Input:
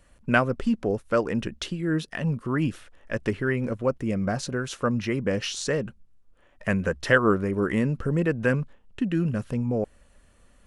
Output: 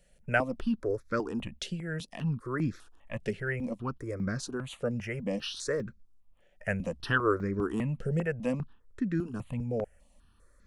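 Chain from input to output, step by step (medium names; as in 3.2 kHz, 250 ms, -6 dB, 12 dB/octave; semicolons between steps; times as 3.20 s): stepped phaser 5 Hz 290–2900 Hz; trim -3.5 dB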